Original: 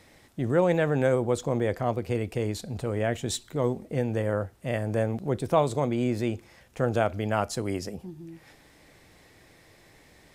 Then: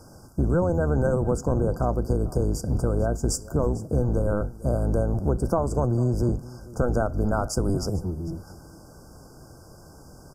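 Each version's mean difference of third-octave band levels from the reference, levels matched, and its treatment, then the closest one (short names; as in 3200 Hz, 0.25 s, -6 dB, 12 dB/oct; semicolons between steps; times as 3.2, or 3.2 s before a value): 7.5 dB: octaver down 1 oct, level +3 dB; compressor, threshold -27 dBFS, peak gain reduction 11.5 dB; brick-wall FIR band-stop 1600–4600 Hz; echo 0.447 s -19.5 dB; gain +7.5 dB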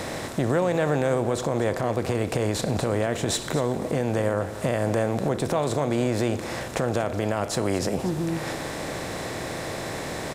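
11.0 dB: per-bin compression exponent 0.6; compressor 4:1, threshold -28 dBFS, peak gain reduction 11.5 dB; limiter -21 dBFS, peak gain reduction 5.5 dB; on a send: echo 0.234 s -14 dB; on the sum: gain +8 dB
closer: first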